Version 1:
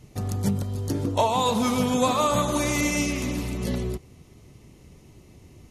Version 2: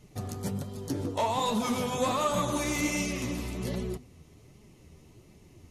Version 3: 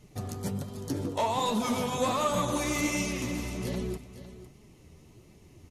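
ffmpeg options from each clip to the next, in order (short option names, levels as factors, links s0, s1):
-af "bandreject=f=50:t=h:w=6,bandreject=f=100:t=h:w=6,bandreject=f=150:t=h:w=6,bandreject=f=200:t=h:w=6,bandreject=f=250:t=h:w=6,asoftclip=type=tanh:threshold=0.158,flanger=delay=4.7:depth=8.4:regen=39:speed=1.3:shape=sinusoidal"
-af "aecho=1:1:506:0.2"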